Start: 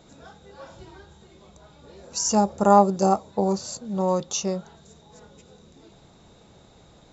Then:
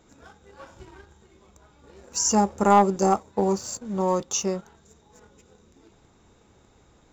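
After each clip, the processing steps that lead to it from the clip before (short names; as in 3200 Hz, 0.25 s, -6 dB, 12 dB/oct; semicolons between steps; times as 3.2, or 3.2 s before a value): fifteen-band EQ 160 Hz -8 dB, 630 Hz -7 dB, 4000 Hz -9 dB; sample leveller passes 1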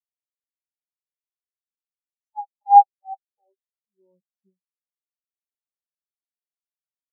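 low shelf 370 Hz +3 dB; high-pass sweep 790 Hz -> 79 Hz, 3.29–4.79; spectral expander 4:1; gain -1.5 dB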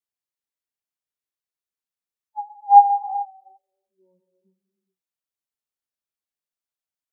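non-linear reverb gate 0.45 s flat, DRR 8.5 dB; gain +1 dB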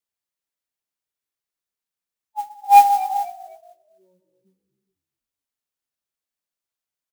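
soft clip -4.5 dBFS, distortion -16 dB; frequency-shifting echo 0.25 s, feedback 34%, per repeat -52 Hz, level -18 dB; modulation noise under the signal 21 dB; gain +2.5 dB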